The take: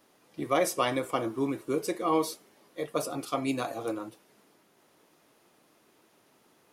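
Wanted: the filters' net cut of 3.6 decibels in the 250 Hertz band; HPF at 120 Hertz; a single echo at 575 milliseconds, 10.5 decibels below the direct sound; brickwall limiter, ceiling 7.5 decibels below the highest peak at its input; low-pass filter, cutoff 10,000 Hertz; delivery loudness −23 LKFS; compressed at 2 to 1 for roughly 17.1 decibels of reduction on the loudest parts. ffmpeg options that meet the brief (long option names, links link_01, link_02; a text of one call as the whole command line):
ffmpeg -i in.wav -af "highpass=120,lowpass=10000,equalizer=frequency=250:width_type=o:gain=-4.5,acompressor=threshold=-54dB:ratio=2,alimiter=level_in=13.5dB:limit=-24dB:level=0:latency=1,volume=-13.5dB,aecho=1:1:575:0.299,volume=26.5dB" out.wav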